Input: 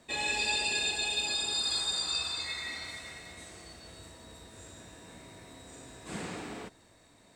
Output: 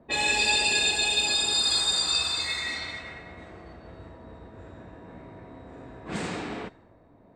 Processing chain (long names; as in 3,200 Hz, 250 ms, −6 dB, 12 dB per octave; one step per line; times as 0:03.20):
low-pass that shuts in the quiet parts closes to 710 Hz, open at −32.5 dBFS
level +7 dB